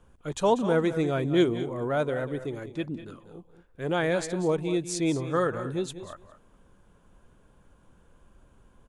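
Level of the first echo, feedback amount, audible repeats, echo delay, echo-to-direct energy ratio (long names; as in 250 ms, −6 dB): −13.0 dB, repeats not evenly spaced, 2, 191 ms, −11.5 dB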